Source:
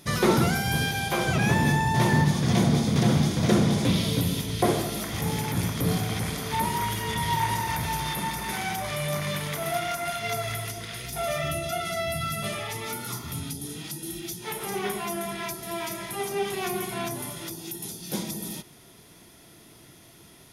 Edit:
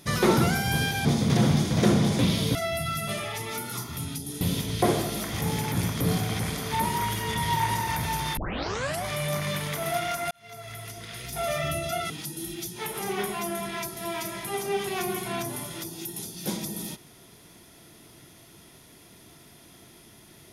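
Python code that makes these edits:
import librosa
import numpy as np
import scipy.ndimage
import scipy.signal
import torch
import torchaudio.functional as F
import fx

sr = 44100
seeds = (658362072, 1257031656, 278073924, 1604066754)

y = fx.edit(x, sr, fx.cut(start_s=1.05, length_s=1.66),
    fx.tape_start(start_s=8.17, length_s=0.67),
    fx.fade_in_span(start_s=10.11, length_s=1.13),
    fx.move(start_s=11.9, length_s=1.86, to_s=4.21), tone=tone)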